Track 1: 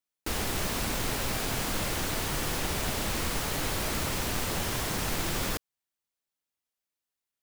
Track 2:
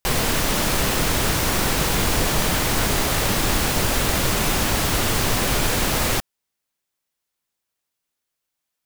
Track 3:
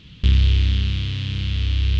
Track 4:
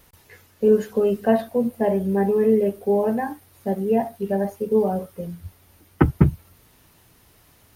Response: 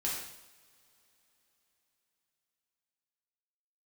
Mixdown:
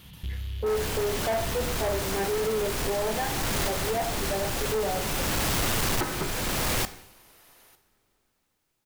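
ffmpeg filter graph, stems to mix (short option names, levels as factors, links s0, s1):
-filter_complex "[0:a]adelay=400,volume=0.596[s0];[1:a]adelay=650,volume=1.12,asplit=2[s1][s2];[s2]volume=0.0794[s3];[2:a]acompressor=threshold=0.0355:ratio=4,volume=0.355,asplit=2[s4][s5];[s5]volume=0.562[s6];[3:a]highpass=510,volume=0.841,asplit=3[s7][s8][s9];[s8]volume=0.316[s10];[s9]apad=whole_len=419308[s11];[s1][s11]sidechaincompress=threshold=0.0141:ratio=8:attack=28:release=584[s12];[4:a]atrim=start_sample=2205[s13];[s3][s6][s10]amix=inputs=3:normalize=0[s14];[s14][s13]afir=irnorm=-1:irlink=0[s15];[s0][s12][s4][s7][s15]amix=inputs=5:normalize=0,asoftclip=type=tanh:threshold=0.0708"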